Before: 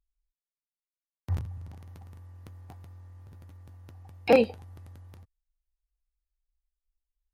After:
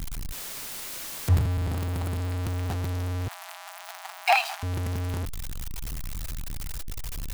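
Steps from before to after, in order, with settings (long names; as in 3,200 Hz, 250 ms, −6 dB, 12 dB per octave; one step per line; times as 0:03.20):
converter with a step at zero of −32 dBFS
0:01.35–0:02.43: notch filter 5,900 Hz, Q 11
0:03.28–0:04.63: linear-phase brick-wall high-pass 630 Hz
level +7 dB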